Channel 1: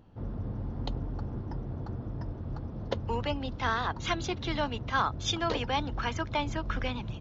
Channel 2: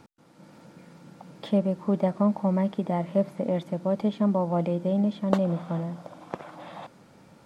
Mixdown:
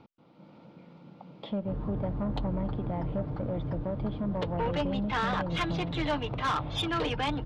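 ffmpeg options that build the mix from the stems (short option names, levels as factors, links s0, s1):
-filter_complex "[0:a]aecho=1:1:6.6:0.59,adelay=1500,volume=1.26[s0];[1:a]equalizer=f=1700:t=o:w=0.36:g=-12.5,acompressor=threshold=0.0316:ratio=2,volume=0.794[s1];[s0][s1]amix=inputs=2:normalize=0,lowpass=f=3800:w=0.5412,lowpass=f=3800:w=1.3066,asoftclip=type=tanh:threshold=0.0668"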